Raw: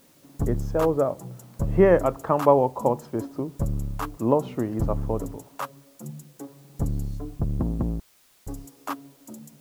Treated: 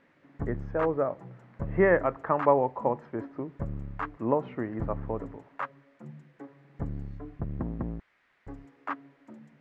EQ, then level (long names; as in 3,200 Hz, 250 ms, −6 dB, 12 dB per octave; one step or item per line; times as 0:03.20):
low-pass with resonance 1,900 Hz, resonance Q 3.1
low-shelf EQ 110 Hz −5 dB
−5.5 dB